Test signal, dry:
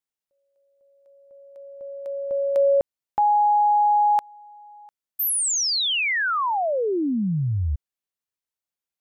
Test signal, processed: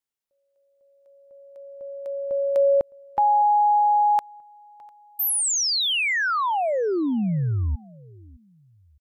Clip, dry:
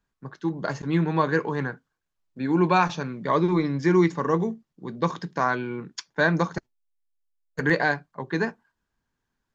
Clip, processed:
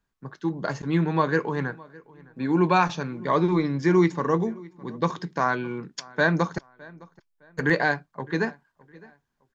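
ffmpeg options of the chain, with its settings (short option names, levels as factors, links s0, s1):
-filter_complex "[0:a]asplit=2[s0][s1];[s1]adelay=611,lowpass=f=3800:p=1,volume=0.0708,asplit=2[s2][s3];[s3]adelay=611,lowpass=f=3800:p=1,volume=0.32[s4];[s0][s2][s4]amix=inputs=3:normalize=0"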